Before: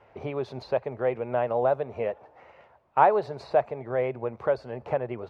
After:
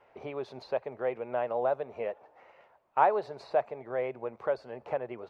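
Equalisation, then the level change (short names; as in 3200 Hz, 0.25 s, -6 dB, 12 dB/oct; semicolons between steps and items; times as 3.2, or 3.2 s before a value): bell 77 Hz -12 dB 2.4 oct; -4.0 dB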